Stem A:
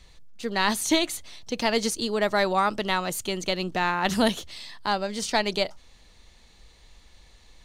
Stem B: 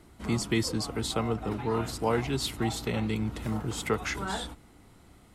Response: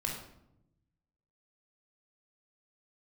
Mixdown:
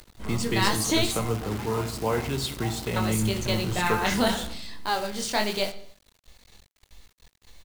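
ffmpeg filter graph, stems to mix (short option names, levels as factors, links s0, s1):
-filter_complex "[0:a]equalizer=f=8700:w=0.44:g=2,flanger=delay=19:depth=6.7:speed=0.86,volume=1,asplit=3[s0][s1][s2];[s0]atrim=end=1.27,asetpts=PTS-STARTPTS,afade=t=out:st=1.266:d=0.004:c=hsin[s3];[s1]atrim=start=1.27:end=2.96,asetpts=PTS-STARTPTS,volume=0[s4];[s2]atrim=start=2.96,asetpts=PTS-STARTPTS,afade=t=in:d=0.004:c=hsin[s5];[s3][s4][s5]concat=n=3:v=0:a=1,asplit=3[s6][s7][s8];[s7]volume=0.168[s9];[s8]volume=0.211[s10];[1:a]volume=0.794,asplit=2[s11][s12];[s12]volume=0.398[s13];[2:a]atrim=start_sample=2205[s14];[s9][s13]amix=inputs=2:normalize=0[s15];[s15][s14]afir=irnorm=-1:irlink=0[s16];[s10]aecho=0:1:63|126|189|252|315|378|441:1|0.48|0.23|0.111|0.0531|0.0255|0.0122[s17];[s6][s11][s16][s17]amix=inputs=4:normalize=0,acompressor=mode=upward:threshold=0.00708:ratio=2.5,acrusher=bits=7:dc=4:mix=0:aa=0.000001"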